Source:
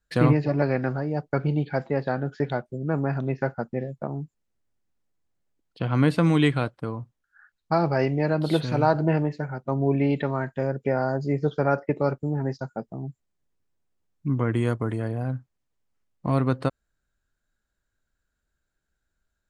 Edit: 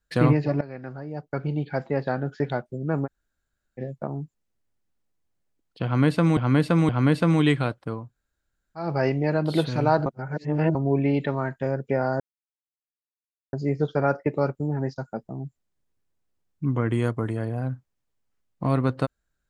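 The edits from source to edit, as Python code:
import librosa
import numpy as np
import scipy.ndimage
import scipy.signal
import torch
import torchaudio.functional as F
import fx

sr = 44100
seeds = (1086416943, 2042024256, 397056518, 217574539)

y = fx.edit(x, sr, fx.fade_in_from(start_s=0.61, length_s=1.36, floor_db=-17.5),
    fx.room_tone_fill(start_s=3.06, length_s=0.73, crossfade_s=0.04),
    fx.repeat(start_s=5.85, length_s=0.52, count=3),
    fx.room_tone_fill(start_s=7.01, length_s=0.81, crossfade_s=0.24),
    fx.reverse_span(start_s=9.02, length_s=0.69),
    fx.insert_silence(at_s=11.16, length_s=1.33), tone=tone)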